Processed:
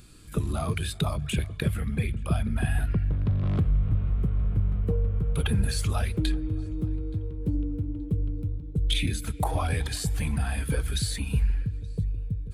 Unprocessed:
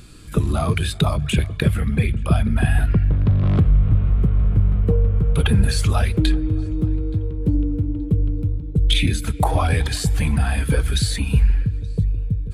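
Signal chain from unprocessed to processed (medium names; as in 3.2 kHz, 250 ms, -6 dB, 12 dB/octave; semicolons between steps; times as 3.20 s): treble shelf 8.1 kHz +6 dB; trim -8.5 dB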